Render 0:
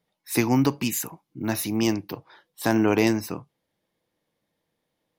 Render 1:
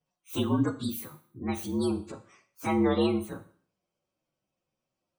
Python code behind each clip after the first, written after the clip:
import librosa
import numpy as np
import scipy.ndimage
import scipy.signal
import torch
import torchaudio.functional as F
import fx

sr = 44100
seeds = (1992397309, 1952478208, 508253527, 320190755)

y = fx.partial_stretch(x, sr, pct=117)
y = fx.spec_gate(y, sr, threshold_db=-30, keep='strong')
y = fx.rev_schroeder(y, sr, rt60_s=0.51, comb_ms=26, drr_db=10.5)
y = y * librosa.db_to_amplitude(-3.5)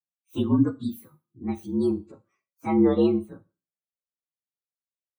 y = fx.spectral_expand(x, sr, expansion=1.5)
y = y * librosa.db_to_amplitude(4.5)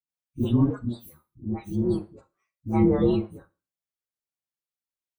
y = fx.octave_divider(x, sr, octaves=1, level_db=-3.0)
y = fx.dispersion(y, sr, late='highs', ms=96.0, hz=530.0)
y = y * librosa.db_to_amplitude(-1.5)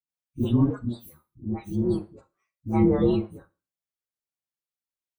y = x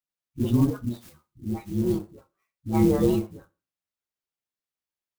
y = fx.clock_jitter(x, sr, seeds[0], jitter_ms=0.031)